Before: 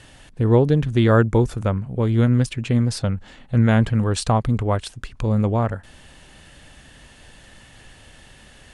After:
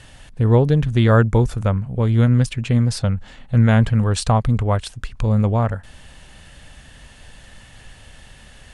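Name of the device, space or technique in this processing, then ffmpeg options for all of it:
low shelf boost with a cut just above: -af "lowshelf=f=83:g=5.5,equalizer=f=330:t=o:w=0.72:g=-5,volume=1.5dB"

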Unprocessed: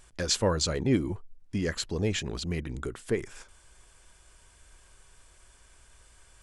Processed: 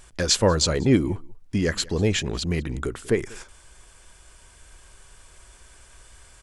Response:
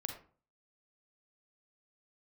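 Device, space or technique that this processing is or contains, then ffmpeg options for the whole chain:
ducked delay: -filter_complex "[0:a]asplit=3[a][b][c];[b]adelay=191,volume=-6dB[d];[c]apad=whole_len=291821[e];[d][e]sidechaincompress=threshold=-45dB:ratio=4:attack=5.8:release=1490[f];[a][f]amix=inputs=2:normalize=0,volume=6.5dB"

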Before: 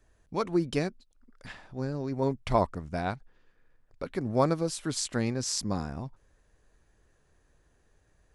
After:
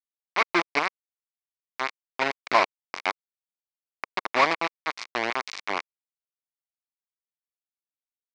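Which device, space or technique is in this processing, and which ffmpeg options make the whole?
hand-held game console: -af "acrusher=bits=3:mix=0:aa=0.000001,highpass=440,equalizer=f=510:t=q:w=4:g=-6,equalizer=f=1.1k:t=q:w=4:g=5,equalizer=f=2.2k:t=q:w=4:g=9,equalizer=f=3.2k:t=q:w=4:g=-4,lowpass=f=4.8k:w=0.5412,lowpass=f=4.8k:w=1.3066,volume=4dB"

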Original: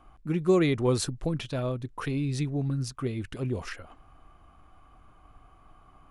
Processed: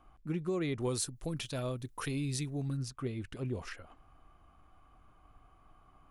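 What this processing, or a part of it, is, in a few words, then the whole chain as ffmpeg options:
clipper into limiter: -filter_complex "[0:a]asettb=1/sr,asplit=3[a][b][c];[a]atrim=end=0.804[d];[b]atrim=start=0.8:end=2.77,asetpts=PTS-STARTPTS,afade=t=in:d=0.004:c=qsin,afade=t=out:st=1.966:d=0.004:c=qsin,aemphasis=mode=production:type=75kf[e];[c]atrim=start=2.766[f];[d][e]acrossfade=d=0.004:c1=hsin:c2=qsin[g];[g][f]acrossfade=d=0.004:c1=qsin:c2=hsin,asoftclip=type=hard:threshold=-11.5dB,alimiter=limit=-19dB:level=0:latency=1:release=418,volume=-6dB"

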